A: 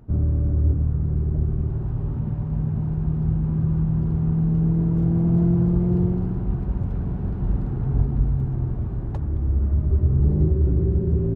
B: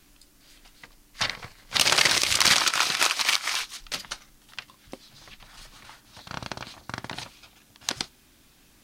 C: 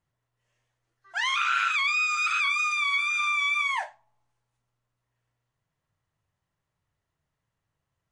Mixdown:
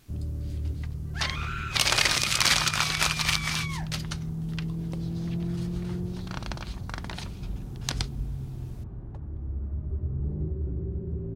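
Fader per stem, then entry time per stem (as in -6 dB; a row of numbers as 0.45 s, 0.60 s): -12.0 dB, -3.0 dB, -11.5 dB; 0.00 s, 0.00 s, 0.00 s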